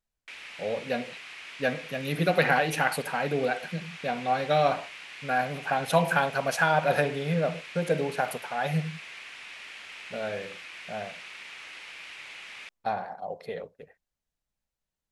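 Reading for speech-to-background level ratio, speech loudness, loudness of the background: 13.0 dB, -28.5 LUFS, -41.5 LUFS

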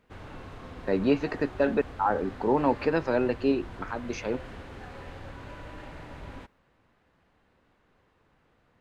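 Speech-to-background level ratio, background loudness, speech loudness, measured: 16.0 dB, -44.0 LUFS, -28.0 LUFS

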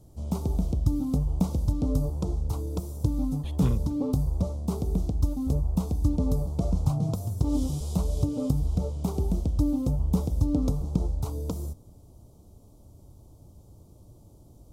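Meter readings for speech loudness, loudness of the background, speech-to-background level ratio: -31.5 LUFS, -28.5 LUFS, -3.0 dB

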